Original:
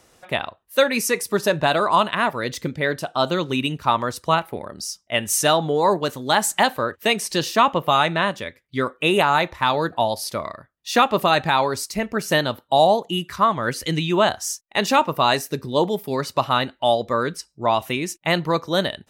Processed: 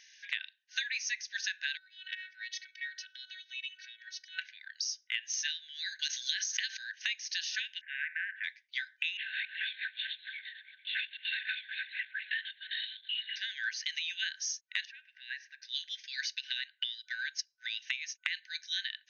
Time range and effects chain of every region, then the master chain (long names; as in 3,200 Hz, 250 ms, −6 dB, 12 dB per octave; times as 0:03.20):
0:01.77–0:04.39: low-pass filter 3,300 Hz 6 dB per octave + phases set to zero 374 Hz + downward compressor 8 to 1, threshold −32 dBFS
0:05.99–0:07.02: parametric band 6,500 Hz +13.5 dB 1.5 octaves + background raised ahead of every attack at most 52 dB per second
0:07.81–0:08.44: Bessel low-pass filter 890 Hz, order 8 + every bin compressed towards the loudest bin 2 to 1
0:09.17–0:13.36: feedback delay that plays each chunk backwards 226 ms, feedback 41%, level −10.5 dB + four-pole ladder high-pass 650 Hz, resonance 25% + linear-prediction vocoder at 8 kHz whisper
0:14.85–0:15.62: low-pass filter 1,400 Hz + downward compressor 2.5 to 1, threshold −30 dBFS
0:16.35–0:18.31: downward compressor 2 to 1, threshold −23 dBFS + transient designer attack +9 dB, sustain −7 dB
whole clip: brick-wall band-pass 1,500–6,600 Hz; downward compressor 6 to 1, threshold −36 dBFS; level +3 dB